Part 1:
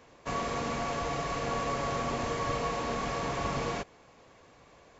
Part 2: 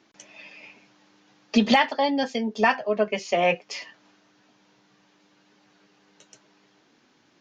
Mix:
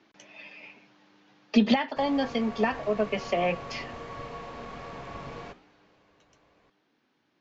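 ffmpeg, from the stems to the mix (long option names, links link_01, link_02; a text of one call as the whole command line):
ffmpeg -i stem1.wav -i stem2.wav -filter_complex "[0:a]aeval=exprs='0.106*(cos(1*acos(clip(val(0)/0.106,-1,1)))-cos(1*PI/2))+0.00376*(cos(8*acos(clip(val(0)/0.106,-1,1)))-cos(8*PI/2))':channel_layout=same,flanger=delay=7.9:depth=8.7:regen=-86:speed=1.2:shape=triangular,adelay=1700,volume=-3.5dB[link_01];[1:a]acrossover=split=360[link_02][link_03];[link_03]acompressor=threshold=-25dB:ratio=5[link_04];[link_02][link_04]amix=inputs=2:normalize=0,volume=-0.5dB,afade=type=out:start_time=5.56:duration=0.64:silence=0.354813[link_05];[link_01][link_05]amix=inputs=2:normalize=0,lowpass=4200" out.wav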